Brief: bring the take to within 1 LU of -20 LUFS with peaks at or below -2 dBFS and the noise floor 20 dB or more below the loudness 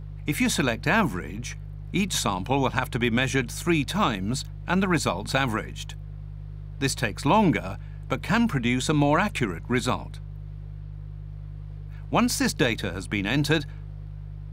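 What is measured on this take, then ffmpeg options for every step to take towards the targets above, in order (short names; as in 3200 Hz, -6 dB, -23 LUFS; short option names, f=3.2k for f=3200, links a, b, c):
hum 50 Hz; harmonics up to 150 Hz; hum level -34 dBFS; loudness -25.0 LUFS; peak -3.5 dBFS; loudness target -20.0 LUFS
-> -af "bandreject=f=50:t=h:w=4,bandreject=f=100:t=h:w=4,bandreject=f=150:t=h:w=4"
-af "volume=5dB,alimiter=limit=-2dB:level=0:latency=1"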